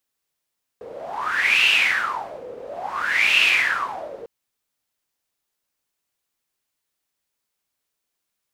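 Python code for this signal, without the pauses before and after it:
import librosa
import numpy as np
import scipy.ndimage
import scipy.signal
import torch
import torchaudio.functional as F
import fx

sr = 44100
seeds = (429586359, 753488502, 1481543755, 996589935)

y = fx.wind(sr, seeds[0], length_s=3.45, low_hz=480.0, high_hz=2700.0, q=10.0, gusts=2, swing_db=19.5)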